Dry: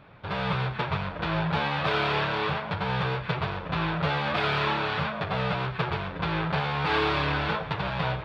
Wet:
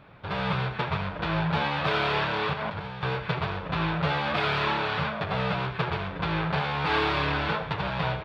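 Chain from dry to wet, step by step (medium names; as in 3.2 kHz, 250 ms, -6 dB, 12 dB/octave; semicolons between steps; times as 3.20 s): 2.53–3.03 s: compressor with a negative ratio -35 dBFS, ratio -1; delay 73 ms -13.5 dB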